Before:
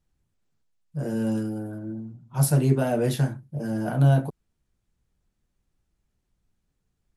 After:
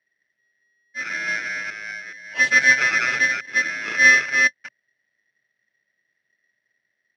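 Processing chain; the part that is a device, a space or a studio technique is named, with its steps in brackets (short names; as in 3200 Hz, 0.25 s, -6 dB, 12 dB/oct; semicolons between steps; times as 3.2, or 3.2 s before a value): reverse delay 0.213 s, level -2 dB; dynamic EQ 140 Hz, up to +6 dB, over -30 dBFS, Q 3; ring modulator pedal into a guitar cabinet (polarity switched at an audio rate 1900 Hz; speaker cabinet 91–4600 Hz, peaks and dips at 130 Hz +10 dB, 210 Hz +7 dB, 320 Hz +3 dB, 600 Hz +9 dB, 1100 Hz -8 dB, 2200 Hz -3 dB)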